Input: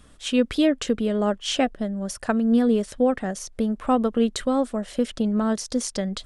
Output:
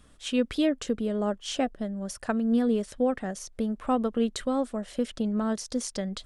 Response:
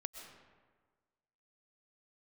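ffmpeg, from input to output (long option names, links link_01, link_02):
-filter_complex "[0:a]asettb=1/sr,asplit=3[link_01][link_02][link_03];[link_01]atrim=end=0.694[link_04];[link_02]atrim=start=0.69:end=1.77,asetpts=PTS-STARTPTS,afade=type=in:duration=0.004:curve=qsin,afade=type=out:start_time=1.076:duration=0.004:curve=qsin,equalizer=frequency=2500:width_type=o:width=1.6:gain=-4[link_05];[link_03]atrim=start=1.766[link_06];[link_04][link_05]acrossfade=duration=0.004:curve1=hsin:curve2=qsin[link_07];[link_07][link_06]acrossfade=duration=0.004:curve1=qsin:curve2=hsin,volume=-5dB"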